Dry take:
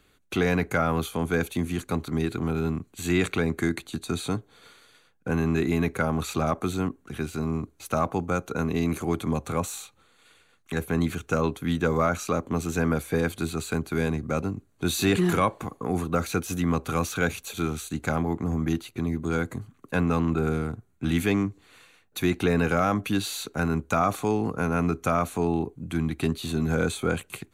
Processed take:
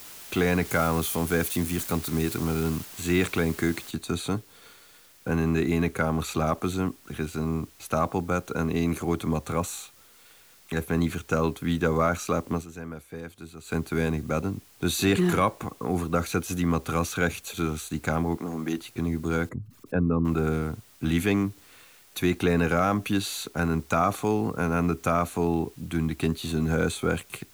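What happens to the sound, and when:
0.65–2.85 s: zero-crossing glitches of -27 dBFS
3.91 s: noise floor step -44 dB -56 dB
12.53–13.76 s: dip -13.5 dB, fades 0.13 s
18.36–18.78 s: high-pass 250 Hz
19.49–20.25 s: resonances exaggerated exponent 2

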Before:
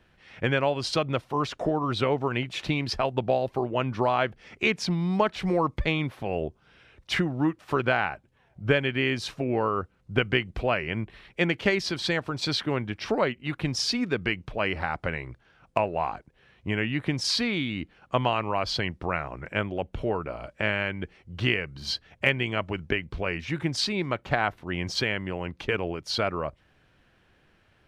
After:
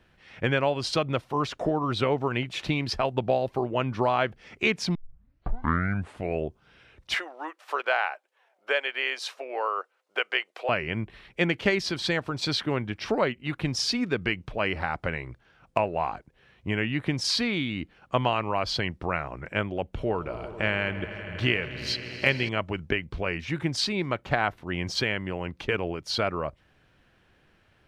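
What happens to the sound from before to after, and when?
4.95 s: tape start 1.49 s
7.14–10.69 s: inverse Chebyshev high-pass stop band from 150 Hz, stop band 60 dB
19.94–22.49 s: echo with a slow build-up 80 ms, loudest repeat 5, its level -18 dB

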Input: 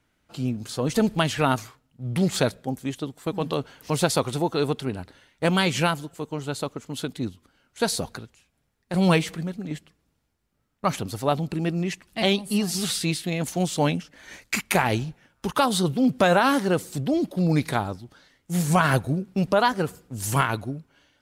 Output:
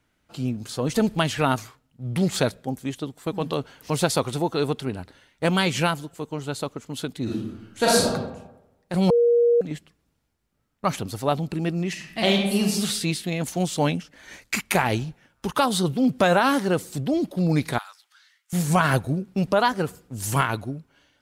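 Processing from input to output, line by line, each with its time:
7.23–8.07 s: reverb throw, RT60 0.94 s, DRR -6.5 dB
9.10–9.61 s: bleep 474 Hz -14.5 dBFS
11.89–12.62 s: reverb throw, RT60 0.95 s, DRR 1 dB
17.78–18.53 s: high-pass 1.3 kHz 24 dB/octave

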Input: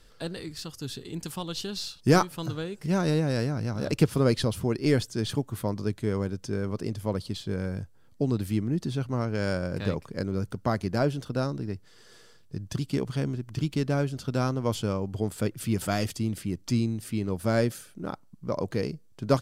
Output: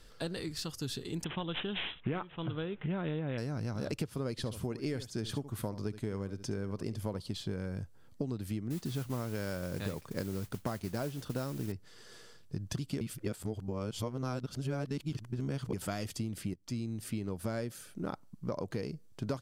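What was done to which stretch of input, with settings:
1.24–3.38 s: careless resampling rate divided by 6×, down none, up filtered
4.31–7.21 s: delay 71 ms -14.5 dB
8.70–11.72 s: modulation noise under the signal 16 dB
13.01–15.73 s: reverse
16.54–17.30 s: fade in, from -16 dB
whole clip: compression 12:1, threshold -32 dBFS

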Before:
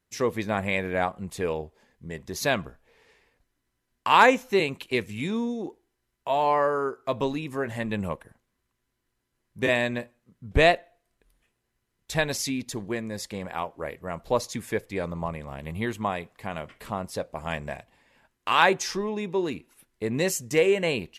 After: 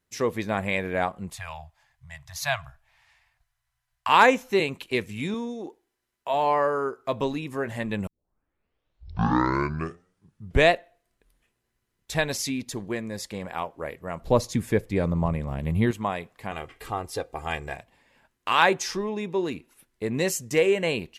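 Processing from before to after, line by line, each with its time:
1.35–4.09 s: Chebyshev band-stop 140–670 Hz, order 4
5.34–6.34 s: bass shelf 190 Hz -11.5 dB
8.07 s: tape start 2.64 s
14.21–15.91 s: bass shelf 340 Hz +11.5 dB
16.51–17.75 s: comb 2.5 ms, depth 70%

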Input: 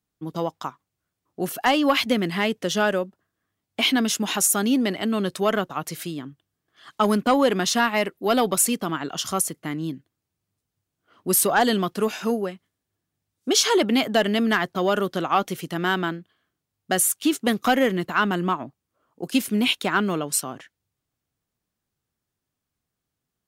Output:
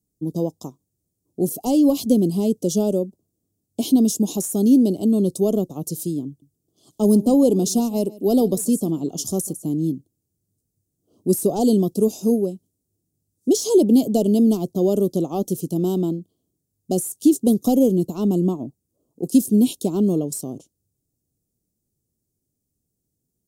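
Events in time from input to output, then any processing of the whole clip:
6.27–9.71 s: delay 148 ms -20.5 dB
whole clip: Chebyshev band-stop 380–7400 Hz, order 2; de-esser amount 50%; trim +7 dB

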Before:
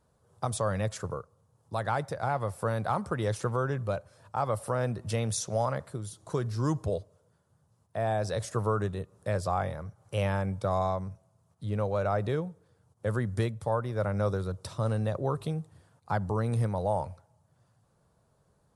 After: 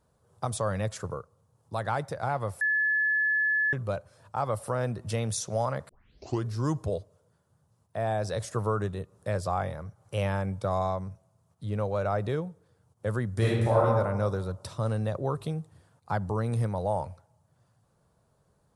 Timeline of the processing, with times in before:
2.61–3.73 s: bleep 1.72 kHz -22.5 dBFS
5.89 s: tape start 0.56 s
13.37–13.84 s: reverb throw, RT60 1.3 s, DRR -6.5 dB

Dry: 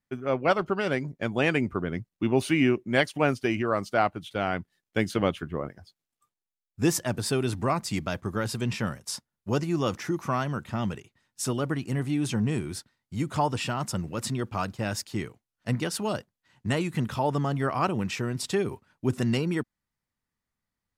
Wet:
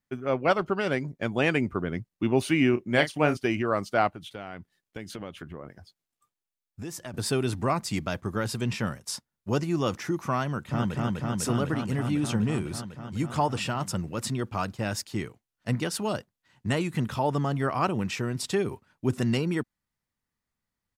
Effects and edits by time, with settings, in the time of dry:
2.70–3.37 s: doubling 33 ms -10 dB
4.12–7.14 s: compression 4:1, threshold -36 dBFS
10.46–10.96 s: echo throw 250 ms, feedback 85%, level -1 dB

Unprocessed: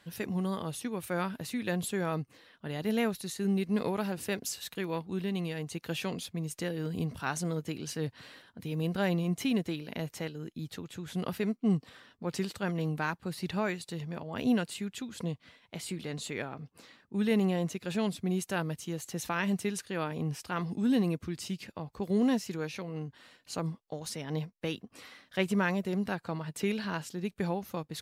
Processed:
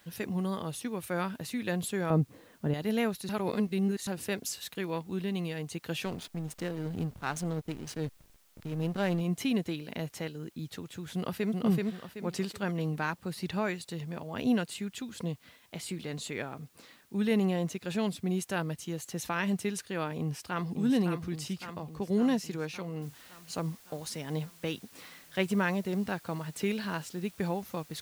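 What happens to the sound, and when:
2.10–2.74 s: tilt shelf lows +10 dB, about 1.3 kHz
3.29–4.07 s: reverse
6.05–9.21 s: hysteresis with a dead band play -36 dBFS
11.14–11.54 s: echo throw 380 ms, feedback 35%, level -1.5 dB
20.19–20.71 s: echo throw 560 ms, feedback 65%, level -6.5 dB
23.02 s: noise floor step -67 dB -57 dB

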